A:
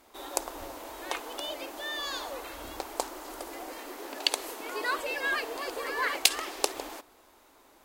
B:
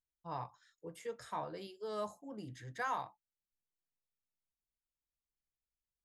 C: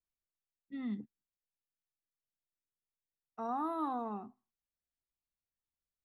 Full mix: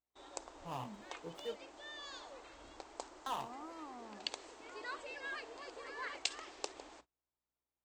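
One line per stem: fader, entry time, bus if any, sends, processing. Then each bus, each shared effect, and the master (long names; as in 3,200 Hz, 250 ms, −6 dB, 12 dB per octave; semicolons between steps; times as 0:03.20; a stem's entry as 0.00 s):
−14.0 dB, 0.00 s, no send, mains hum 60 Hz, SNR 29 dB; Butterworth low-pass 8,300 Hz 96 dB per octave
−0.5 dB, 0.40 s, muted 0:01.56–0:03.26, no send, running median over 25 samples; high-shelf EQ 5,500 Hz +10.5 dB
−14.0 dB, 0.00 s, no send, no processing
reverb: not used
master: noise gate −60 dBFS, range −26 dB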